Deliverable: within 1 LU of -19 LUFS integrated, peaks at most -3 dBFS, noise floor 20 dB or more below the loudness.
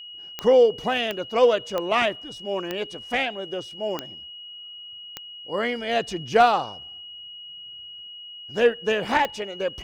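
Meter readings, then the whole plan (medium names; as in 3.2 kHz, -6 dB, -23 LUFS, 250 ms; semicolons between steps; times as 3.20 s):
clicks found 7; steady tone 2.9 kHz; tone level -38 dBFS; loudness -23.5 LUFS; peak level -8.0 dBFS; loudness target -19.0 LUFS
-> de-click; band-stop 2.9 kHz, Q 30; trim +4.5 dB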